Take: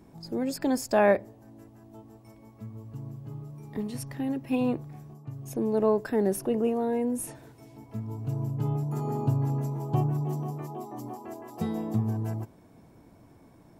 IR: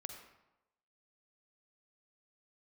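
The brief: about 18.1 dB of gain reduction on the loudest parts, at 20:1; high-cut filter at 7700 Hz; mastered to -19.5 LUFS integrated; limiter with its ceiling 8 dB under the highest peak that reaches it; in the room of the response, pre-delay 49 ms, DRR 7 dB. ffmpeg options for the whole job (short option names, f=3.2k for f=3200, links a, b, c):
-filter_complex "[0:a]lowpass=7.7k,acompressor=threshold=-35dB:ratio=20,alimiter=level_in=9dB:limit=-24dB:level=0:latency=1,volume=-9dB,asplit=2[a][b];[1:a]atrim=start_sample=2205,adelay=49[c];[b][c]afir=irnorm=-1:irlink=0,volume=-4dB[d];[a][d]amix=inputs=2:normalize=0,volume=22dB"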